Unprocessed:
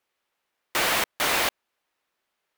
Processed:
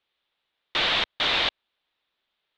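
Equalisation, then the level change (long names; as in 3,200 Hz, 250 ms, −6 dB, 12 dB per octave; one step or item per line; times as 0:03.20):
transistor ladder low-pass 4,000 Hz, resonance 65%
low-shelf EQ 100 Hz +8.5 dB
+7.5 dB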